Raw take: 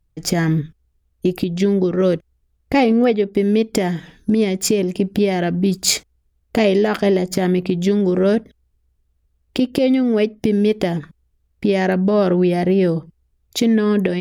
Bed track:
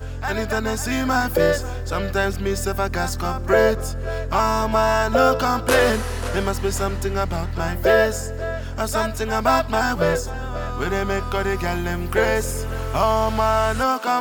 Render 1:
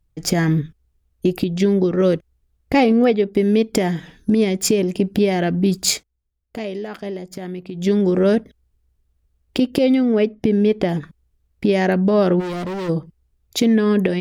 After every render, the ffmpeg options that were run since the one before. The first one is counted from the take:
-filter_complex "[0:a]asettb=1/sr,asplit=3[s0][s1][s2];[s0]atrim=end=10.054[s3];[s1]atrim=start=10.05:end=10.89,asetpts=PTS-STARTPTS,afade=t=in:d=0.004:c=qsin,afade=t=out:st=0.836:d=0.004:c=qsin,lowpass=f=2900:p=1[s4];[s2]atrim=start=10.886[s5];[s3][s4]acrossfade=d=0.004:c1=hsin:c2=qsin[s6];[s6][s5]acrossfade=d=0.004:c1=qsin:c2=hsin,asplit=3[s7][s8][s9];[s7]afade=t=out:st=12.39:d=0.02[s10];[s8]asoftclip=type=hard:threshold=0.0596,afade=t=in:st=12.39:d=0.02,afade=t=out:st=12.88:d=0.02[s11];[s9]afade=t=in:st=12.88:d=0.02[s12];[s10][s11][s12]amix=inputs=3:normalize=0,asplit=3[s13][s14][s15];[s13]atrim=end=6.03,asetpts=PTS-STARTPTS,afade=t=out:st=5.85:d=0.18:silence=0.237137[s16];[s14]atrim=start=6.03:end=7.73,asetpts=PTS-STARTPTS,volume=0.237[s17];[s15]atrim=start=7.73,asetpts=PTS-STARTPTS,afade=t=in:d=0.18:silence=0.237137[s18];[s16][s17][s18]concat=n=3:v=0:a=1"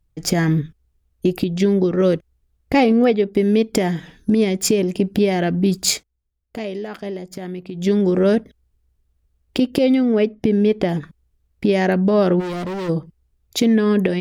-af anull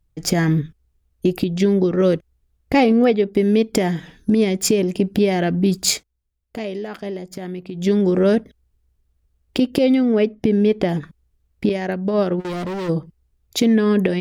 -filter_complex "[0:a]asettb=1/sr,asplit=3[s0][s1][s2];[s0]atrim=end=11.694[s3];[s1]atrim=start=11.69:end=12.45,asetpts=PTS-STARTPTS,afade=t=in:d=0.004:c=qsin,afade=t=out:st=0.756:d=0.004:c=qsin,agate=range=0.0224:threshold=0.251:ratio=3:release=100:detection=peak[s4];[s2]atrim=start=12.446[s5];[s3][s4]acrossfade=d=0.004:c1=hsin:c2=qsin[s6];[s6][s5]acrossfade=d=0.004:c1=qsin:c2=hsin"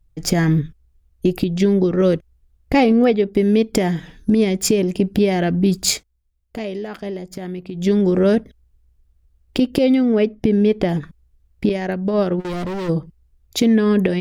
-af "lowshelf=f=68:g=10.5"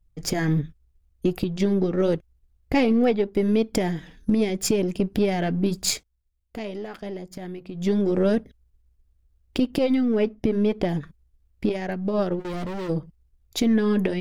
-af "aeval=exprs='if(lt(val(0),0),0.708*val(0),val(0))':c=same,flanger=delay=0.2:depth=4.4:regen=-72:speed=0.83:shape=triangular"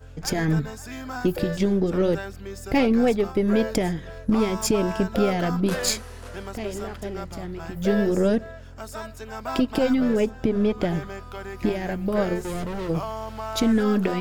-filter_complex "[1:a]volume=0.211[s0];[0:a][s0]amix=inputs=2:normalize=0"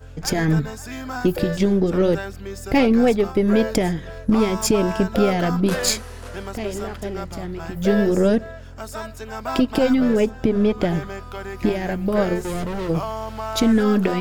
-af "volume=1.5"

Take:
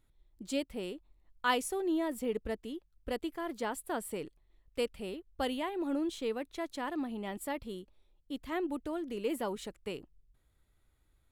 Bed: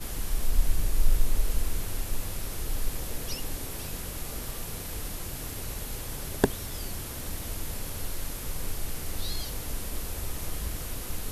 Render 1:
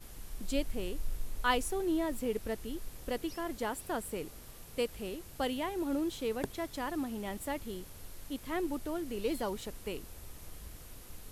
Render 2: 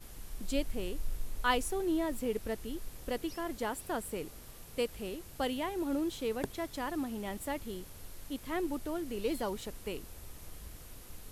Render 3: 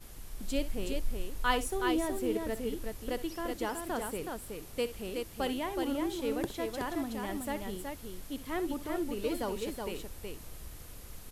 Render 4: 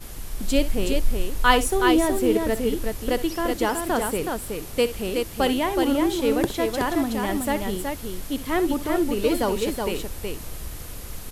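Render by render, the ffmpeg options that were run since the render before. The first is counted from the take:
-filter_complex "[1:a]volume=0.188[s0];[0:a][s0]amix=inputs=2:normalize=0"
-af anull
-af "aecho=1:1:63|372:0.2|0.596"
-af "volume=3.76"

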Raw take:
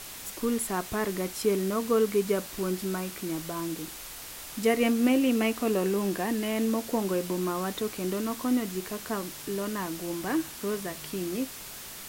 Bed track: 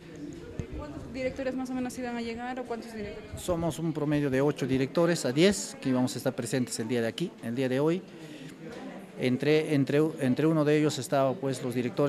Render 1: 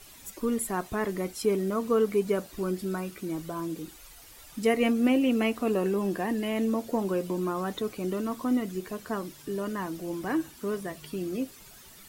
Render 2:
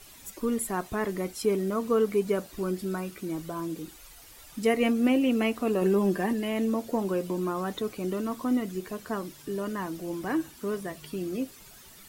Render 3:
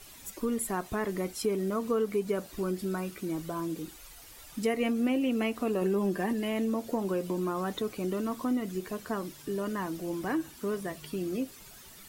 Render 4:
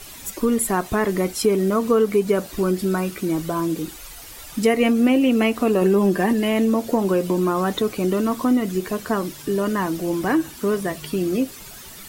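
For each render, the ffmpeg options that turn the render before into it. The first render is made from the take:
-af "afftdn=nr=12:nf=-42"
-filter_complex "[0:a]asettb=1/sr,asplit=3[s0][s1][s2];[s0]atrim=end=5.814[s3];[s1]atrim=start=5.81:end=6.33,asetpts=PTS-STARTPTS,afade=t=in:d=0.004:c=qsin,afade=t=out:st=0.516:d=0.004:c=qsin,aecho=1:1:5.1:0.65,atrim=end_sample=22932[s4];[s2]atrim=start=6.326[s5];[s3][s4]acrossfade=d=0.004:c1=hsin:c2=qsin[s6];[s6][s5]acrossfade=d=0.004:c1=qsin:c2=hsin"
-af "acompressor=threshold=0.0398:ratio=2"
-af "volume=3.55"

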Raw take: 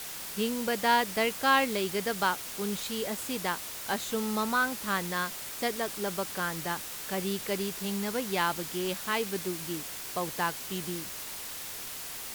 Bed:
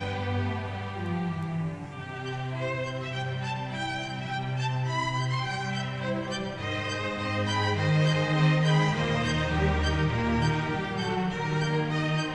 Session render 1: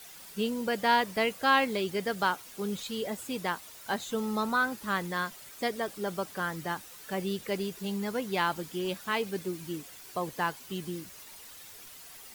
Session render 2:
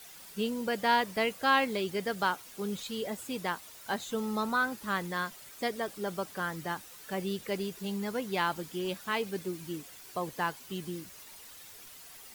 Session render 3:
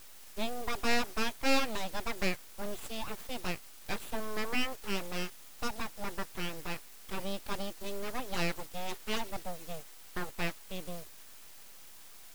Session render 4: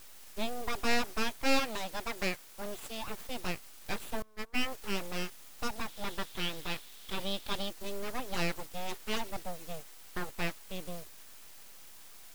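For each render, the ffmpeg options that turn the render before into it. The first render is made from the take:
-af "afftdn=nr=11:nf=-40"
-af "volume=0.841"
-af "aeval=exprs='abs(val(0))':c=same"
-filter_complex "[0:a]asettb=1/sr,asplit=3[s0][s1][s2];[s0]atrim=end=1.594[s3];[s1]atrim=start=1.59:end=3.08,asetpts=PTS-STARTPTS,afade=t=in:d=0.004:c=qsin,afade=t=out:st=1.486:d=0.004:c=qsin,lowshelf=f=190:g=-5.5[s4];[s2]atrim=start=3.076[s5];[s3][s4]acrossfade=d=0.004:c1=hsin:c2=qsin[s6];[s6][s5]acrossfade=d=0.004:c1=qsin:c2=hsin,asettb=1/sr,asplit=3[s7][s8][s9];[s7]atrim=end=4.224[s10];[s8]atrim=start=4.22:end=4.66,asetpts=PTS-STARTPTS,afade=t=in:d=0.004:c=qsin,afade=t=out:st=0.436:d=0.004:c=qsin,agate=range=0.0562:threshold=0.0316:ratio=16:release=100:detection=peak[s11];[s9]atrim=start=4.656[s12];[s10][s11]acrossfade=d=0.004:c1=hsin:c2=qsin[s13];[s13][s12]acrossfade=d=0.004:c1=qsin:c2=hsin,asettb=1/sr,asplit=3[s14][s15][s16];[s14]atrim=end=5.884[s17];[s15]atrim=start=5.88:end=7.69,asetpts=PTS-STARTPTS,afade=t=in:d=0.004:c=qsin,afade=t=out:st=1.806:d=0.004:c=qsin,equalizer=f=3500:t=o:w=0.54:g=10[s18];[s16]atrim=start=7.686[s19];[s17][s18]acrossfade=d=0.004:c1=hsin:c2=qsin[s20];[s20][s19]acrossfade=d=0.004:c1=qsin:c2=hsin"

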